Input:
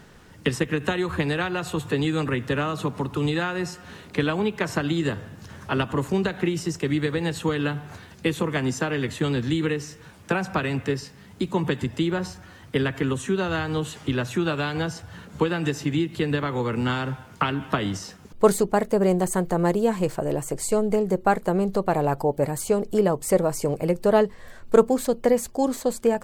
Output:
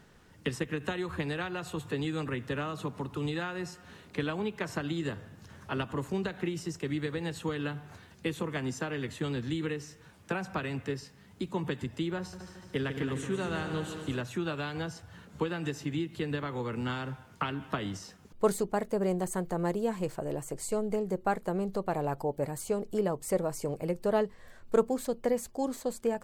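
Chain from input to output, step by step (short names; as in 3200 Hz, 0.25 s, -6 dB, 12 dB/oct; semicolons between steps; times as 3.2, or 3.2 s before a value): 12.18–14.21 multi-head echo 74 ms, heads second and third, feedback 58%, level -9.5 dB; gain -9 dB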